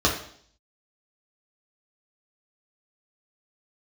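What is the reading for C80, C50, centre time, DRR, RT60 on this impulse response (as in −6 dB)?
10.5 dB, 7.0 dB, 26 ms, −3.0 dB, 0.60 s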